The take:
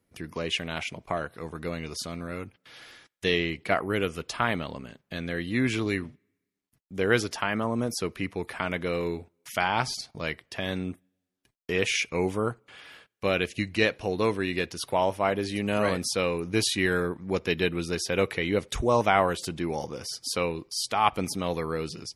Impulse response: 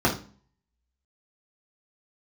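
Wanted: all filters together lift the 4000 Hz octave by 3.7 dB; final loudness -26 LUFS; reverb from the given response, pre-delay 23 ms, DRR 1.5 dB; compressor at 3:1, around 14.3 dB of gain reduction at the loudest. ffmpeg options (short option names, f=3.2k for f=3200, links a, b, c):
-filter_complex "[0:a]equalizer=f=4k:t=o:g=5,acompressor=threshold=-37dB:ratio=3,asplit=2[a][b];[1:a]atrim=start_sample=2205,adelay=23[c];[b][c]afir=irnorm=-1:irlink=0,volume=-17.5dB[d];[a][d]amix=inputs=2:normalize=0,volume=8.5dB"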